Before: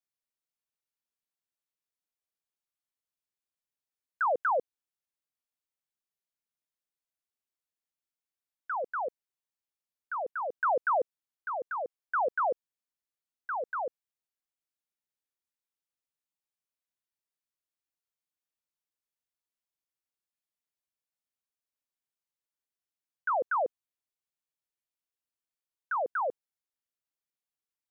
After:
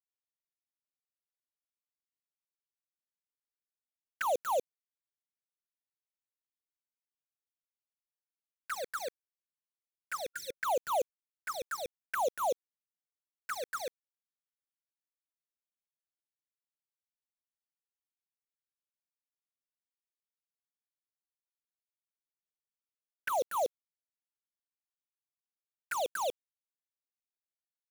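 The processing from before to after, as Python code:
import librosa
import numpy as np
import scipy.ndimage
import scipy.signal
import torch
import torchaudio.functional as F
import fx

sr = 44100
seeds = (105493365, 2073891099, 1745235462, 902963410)

y = fx.quant_dither(x, sr, seeds[0], bits=6, dither='none')
y = fx.env_flanger(y, sr, rest_ms=10.9, full_db=-29.0)
y = fx.spec_erase(y, sr, start_s=10.35, length_s=0.2, low_hz=550.0, high_hz=1400.0)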